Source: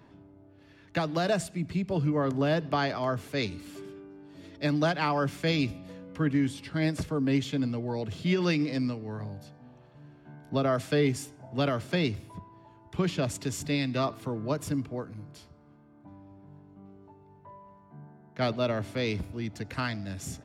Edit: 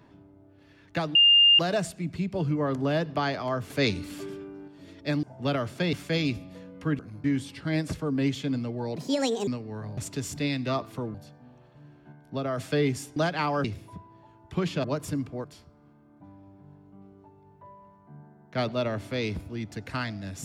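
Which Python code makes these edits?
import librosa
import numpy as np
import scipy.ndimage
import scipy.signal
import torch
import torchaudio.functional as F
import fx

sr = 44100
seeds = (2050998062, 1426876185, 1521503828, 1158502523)

y = fx.edit(x, sr, fx.insert_tone(at_s=1.15, length_s=0.44, hz=2810.0, db=-14.0),
    fx.clip_gain(start_s=3.26, length_s=0.98, db=5.5),
    fx.swap(start_s=4.79, length_s=0.48, other_s=11.36, other_length_s=0.7),
    fx.speed_span(start_s=8.05, length_s=0.79, speed=1.54),
    fx.clip_gain(start_s=10.32, length_s=0.45, db=-4.0),
    fx.move(start_s=13.26, length_s=1.17, to_s=9.34),
    fx.move(start_s=15.03, length_s=0.25, to_s=6.33), tone=tone)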